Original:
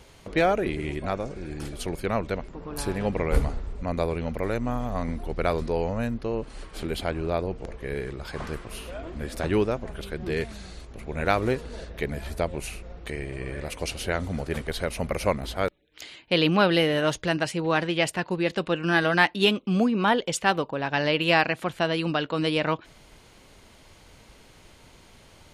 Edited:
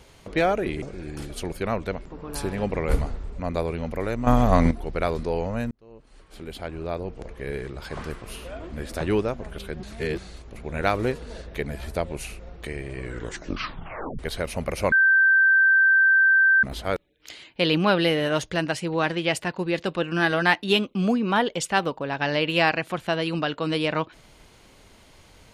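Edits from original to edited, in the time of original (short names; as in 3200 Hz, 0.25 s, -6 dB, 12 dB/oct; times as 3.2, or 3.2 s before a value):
0.82–1.25 cut
4.7–5.14 gain +11 dB
6.14–7.9 fade in
10.26–10.61 reverse
13.42 tape stop 1.20 s
15.35 add tone 1560 Hz -14 dBFS 1.71 s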